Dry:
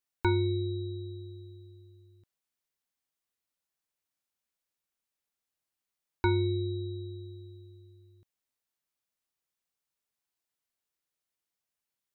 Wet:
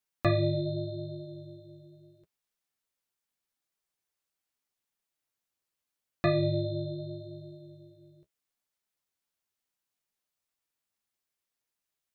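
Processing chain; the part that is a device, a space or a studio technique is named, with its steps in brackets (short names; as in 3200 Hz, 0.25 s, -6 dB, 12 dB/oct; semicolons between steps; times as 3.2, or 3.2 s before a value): alien voice (ring modulator 250 Hz; flange 0.79 Hz, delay 4.5 ms, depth 9.7 ms, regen -31%); gain +7.5 dB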